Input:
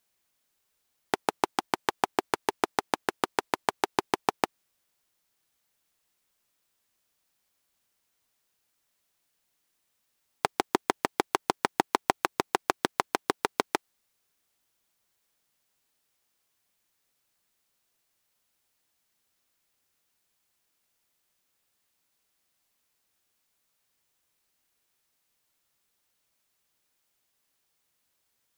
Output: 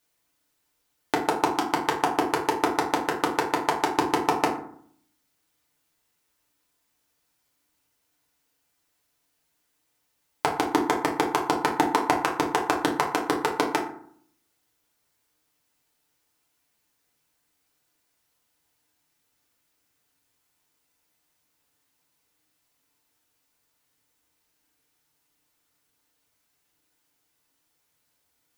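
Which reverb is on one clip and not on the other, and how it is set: FDN reverb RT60 0.6 s, low-frequency decay 1.35×, high-frequency decay 0.5×, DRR -2 dB

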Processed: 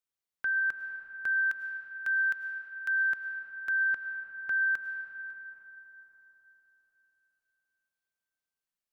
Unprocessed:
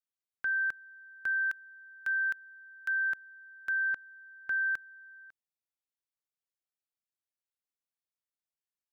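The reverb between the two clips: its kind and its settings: algorithmic reverb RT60 4.3 s, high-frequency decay 0.45×, pre-delay 65 ms, DRR 6 dB; trim +1 dB

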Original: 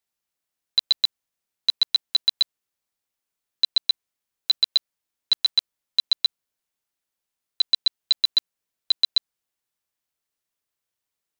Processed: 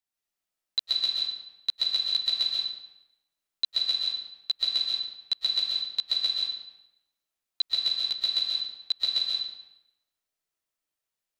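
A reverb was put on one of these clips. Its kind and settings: algorithmic reverb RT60 0.92 s, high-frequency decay 0.85×, pre-delay 95 ms, DRR -3 dB; trim -7 dB

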